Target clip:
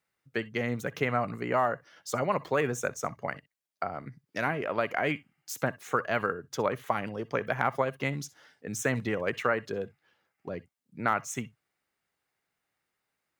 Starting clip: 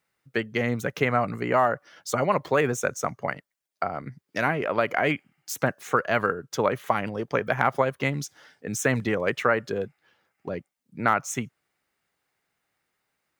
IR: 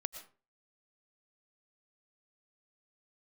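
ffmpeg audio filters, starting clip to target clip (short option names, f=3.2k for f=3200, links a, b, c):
-filter_complex "[1:a]atrim=start_sample=2205,atrim=end_sample=4410,asetrate=66150,aresample=44100[a];[0:a][a]afir=irnorm=-1:irlink=0"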